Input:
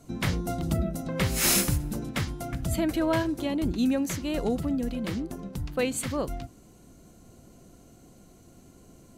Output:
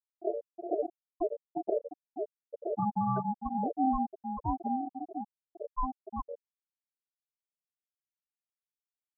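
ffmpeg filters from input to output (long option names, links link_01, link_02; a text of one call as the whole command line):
ffmpeg -i in.wav -af "afftfilt=real='re*gte(hypot(re,im),0.316)':imag='im*gte(hypot(re,im),0.316)':win_size=1024:overlap=0.75,lowpass=frequency=6700:width_type=q:width=2.4,aeval=exprs='val(0)*sin(2*PI*520*n/s)':channel_layout=same" out.wav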